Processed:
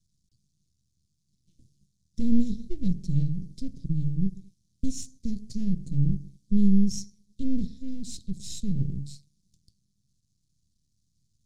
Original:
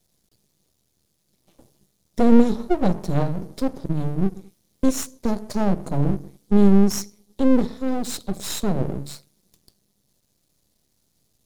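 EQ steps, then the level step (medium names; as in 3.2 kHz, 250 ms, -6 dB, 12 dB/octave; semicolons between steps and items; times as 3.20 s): Chebyshev band-stop 140–6200 Hz, order 2; distance through air 96 m; 0.0 dB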